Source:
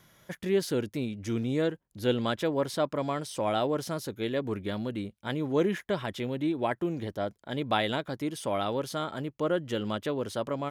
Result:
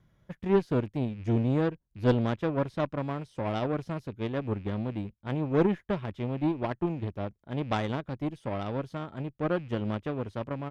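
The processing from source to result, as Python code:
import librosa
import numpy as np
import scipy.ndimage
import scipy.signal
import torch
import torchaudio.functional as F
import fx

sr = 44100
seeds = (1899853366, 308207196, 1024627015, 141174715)

y = fx.rattle_buzz(x, sr, strikes_db=-41.0, level_db=-36.0)
y = fx.riaa(y, sr, side='playback')
y = fx.cheby_harmonics(y, sr, harmonics=(2, 3, 7), levels_db=(-13, -22, -23), full_scale_db=-8.5)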